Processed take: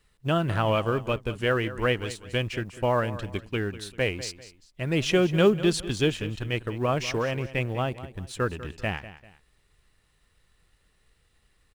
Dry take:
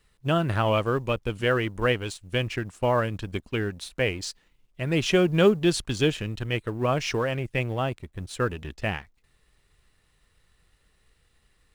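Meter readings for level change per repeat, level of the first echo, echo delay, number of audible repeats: −9.5 dB, −15.0 dB, 196 ms, 2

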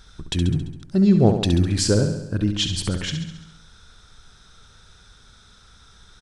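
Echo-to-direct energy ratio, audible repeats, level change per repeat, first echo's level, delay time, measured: −6.0 dB, 6, −4.5 dB, −8.0 dB, 68 ms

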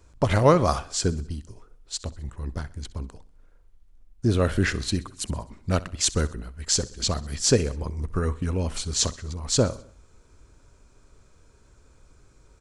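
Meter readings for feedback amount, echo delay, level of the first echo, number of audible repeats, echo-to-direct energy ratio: 54%, 64 ms, −19.5 dB, 3, −18.0 dB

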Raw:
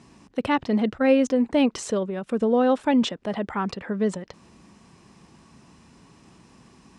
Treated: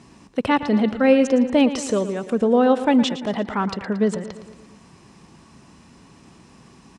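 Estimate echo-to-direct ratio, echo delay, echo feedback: −11.5 dB, 114 ms, 57%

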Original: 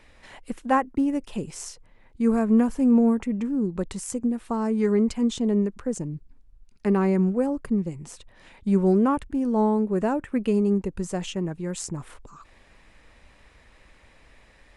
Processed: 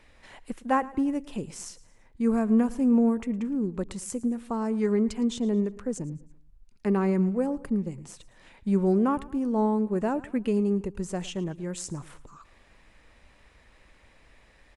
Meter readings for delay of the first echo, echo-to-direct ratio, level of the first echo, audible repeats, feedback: 111 ms, −18.5 dB, −19.5 dB, 3, 44%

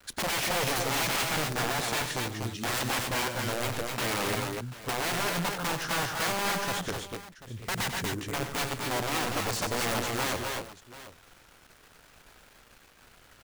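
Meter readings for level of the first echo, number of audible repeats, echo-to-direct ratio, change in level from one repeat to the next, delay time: −9.5 dB, 4, −2.0 dB, repeats not evenly spaced, 92 ms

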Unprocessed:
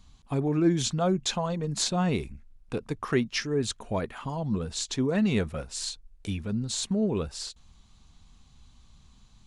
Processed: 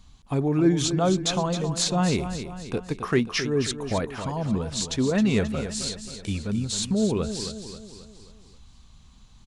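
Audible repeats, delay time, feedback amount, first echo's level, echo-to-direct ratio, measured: 5, 267 ms, 50%, −10.0 dB, −9.0 dB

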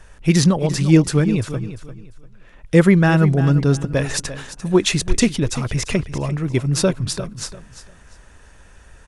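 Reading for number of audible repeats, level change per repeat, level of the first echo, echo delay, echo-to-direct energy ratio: 2, −12.0 dB, −13.0 dB, 346 ms, −12.5 dB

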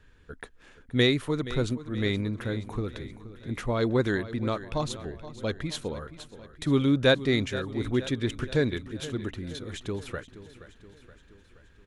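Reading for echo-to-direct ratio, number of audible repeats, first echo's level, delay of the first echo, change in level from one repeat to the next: −13.5 dB, 4, −15.0 dB, 474 ms, −5.0 dB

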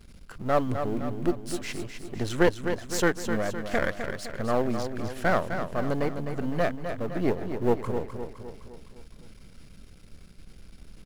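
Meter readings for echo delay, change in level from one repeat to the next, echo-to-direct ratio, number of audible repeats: 256 ms, −5.5 dB, −6.5 dB, 5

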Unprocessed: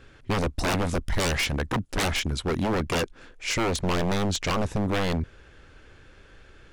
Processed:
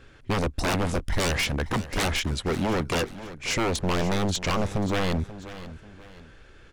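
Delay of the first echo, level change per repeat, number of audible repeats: 536 ms, −9.0 dB, 2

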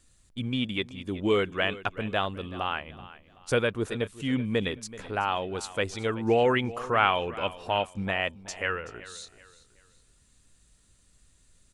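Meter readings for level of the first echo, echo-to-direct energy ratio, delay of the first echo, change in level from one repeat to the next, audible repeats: −17.0 dB, −16.5 dB, 379 ms, −9.5 dB, 2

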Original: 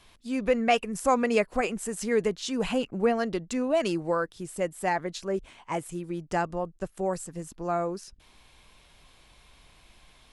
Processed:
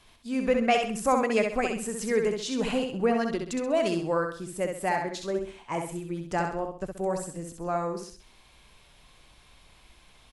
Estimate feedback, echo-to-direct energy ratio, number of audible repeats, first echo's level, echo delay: 36%, −4.5 dB, 4, −5.0 dB, 65 ms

